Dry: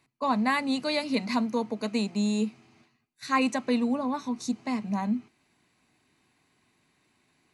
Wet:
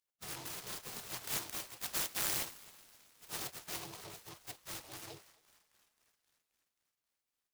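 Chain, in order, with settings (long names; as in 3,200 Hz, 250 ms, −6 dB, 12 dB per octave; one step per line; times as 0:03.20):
gate on every frequency bin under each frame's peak −30 dB weak
0:01.24–0:03.28: high-shelf EQ 3,200 Hz +11 dB
feedback echo with a band-pass in the loop 265 ms, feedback 69%, band-pass 2,200 Hz, level −16.5 dB
short delay modulated by noise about 3,600 Hz, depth 0.15 ms
level +3.5 dB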